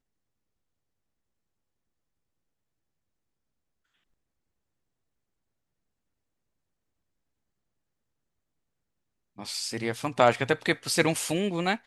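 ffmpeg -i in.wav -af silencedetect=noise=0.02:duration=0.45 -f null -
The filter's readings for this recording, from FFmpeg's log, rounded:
silence_start: 0.00
silence_end: 9.39 | silence_duration: 9.39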